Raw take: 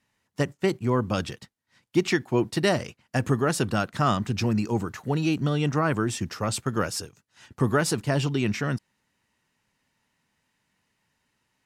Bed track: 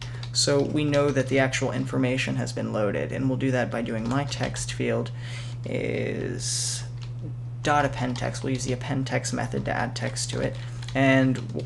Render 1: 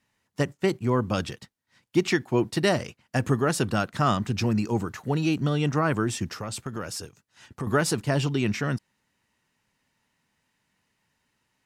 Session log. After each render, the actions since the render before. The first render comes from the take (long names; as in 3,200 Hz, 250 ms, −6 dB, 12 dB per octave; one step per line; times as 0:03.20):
0:06.36–0:07.67: downward compressor 2.5 to 1, threshold −31 dBFS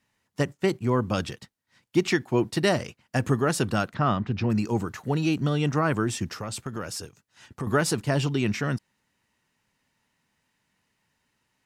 0:03.94–0:04.50: high-frequency loss of the air 250 metres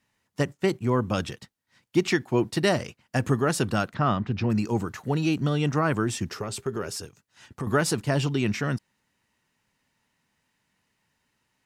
0:00.75–0:01.33: notch filter 4,600 Hz
0:06.29–0:06.96: parametric band 400 Hz +14.5 dB 0.21 octaves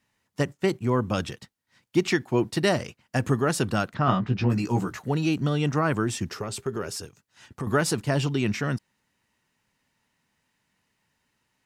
0:04.06–0:04.99: double-tracking delay 16 ms −3 dB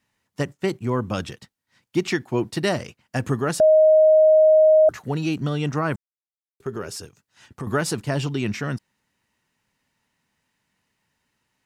0:03.60–0:04.89: beep over 625 Hz −10.5 dBFS
0:05.96–0:06.60: silence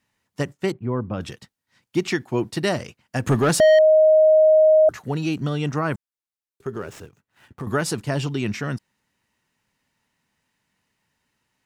0:00.72–0:01.21: head-to-tape spacing loss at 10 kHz 42 dB
0:03.27–0:03.79: leveller curve on the samples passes 2
0:06.69–0:07.67: running median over 9 samples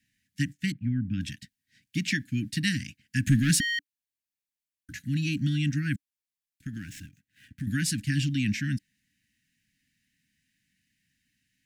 Chebyshev band-stop filter 290–1,600 Hz, order 5
parametric band 1,000 Hz −4.5 dB 0.52 octaves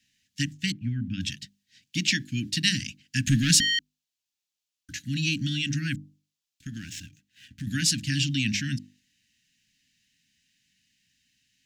flat-topped bell 4,400 Hz +9 dB
mains-hum notches 50/100/150/200/250/300/350 Hz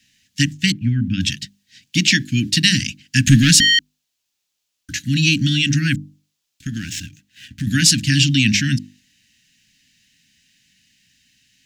boost into a limiter +11 dB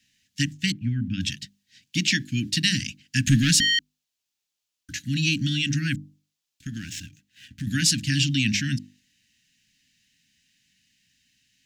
level −7.5 dB